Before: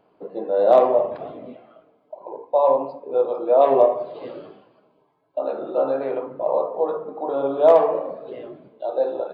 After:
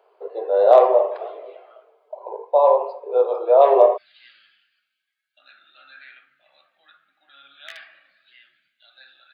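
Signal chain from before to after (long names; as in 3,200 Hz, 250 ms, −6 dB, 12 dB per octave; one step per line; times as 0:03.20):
elliptic high-pass filter 400 Hz, stop band 40 dB, from 0:03.96 1,600 Hz
level +3 dB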